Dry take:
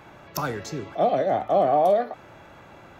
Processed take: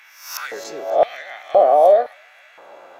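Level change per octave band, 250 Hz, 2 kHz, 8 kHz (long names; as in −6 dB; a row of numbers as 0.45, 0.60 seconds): −8.5 dB, +5.5 dB, can't be measured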